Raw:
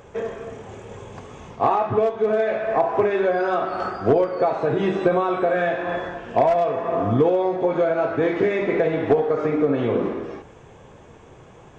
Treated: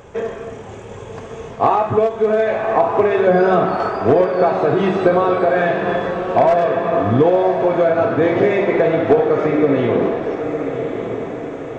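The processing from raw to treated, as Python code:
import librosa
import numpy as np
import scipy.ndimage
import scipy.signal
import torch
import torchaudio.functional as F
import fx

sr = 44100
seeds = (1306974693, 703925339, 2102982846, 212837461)

y = fx.peak_eq(x, sr, hz=160.0, db=14.5, octaves=1.7, at=(3.27, 3.75))
y = fx.echo_diffused(y, sr, ms=1114, feedback_pct=54, wet_db=-8.0)
y = fx.end_taper(y, sr, db_per_s=250.0)
y = y * 10.0 ** (4.5 / 20.0)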